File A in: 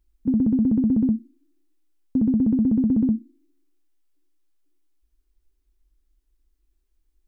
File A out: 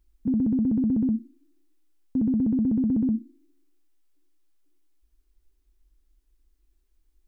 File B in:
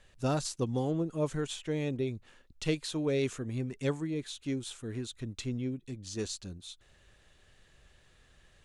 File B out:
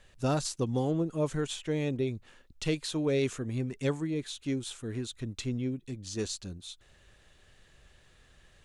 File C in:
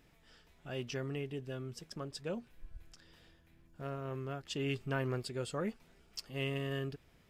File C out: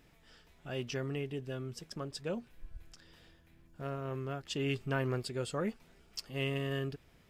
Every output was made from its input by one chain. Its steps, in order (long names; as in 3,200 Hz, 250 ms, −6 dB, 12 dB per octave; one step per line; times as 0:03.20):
brickwall limiter −21 dBFS
level +2 dB